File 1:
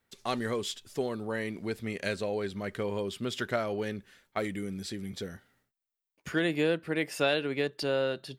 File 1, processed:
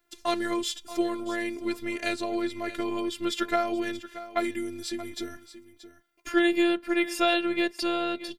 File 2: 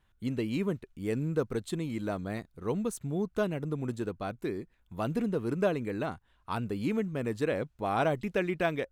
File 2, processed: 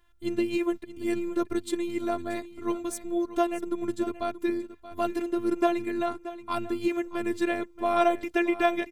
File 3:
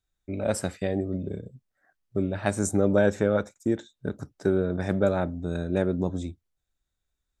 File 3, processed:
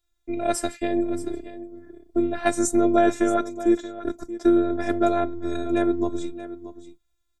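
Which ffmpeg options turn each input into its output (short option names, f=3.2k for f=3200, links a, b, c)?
-af "afftfilt=real='hypot(re,im)*cos(PI*b)':imag='0':win_size=512:overlap=0.75,aecho=1:1:629:0.188,volume=8dB"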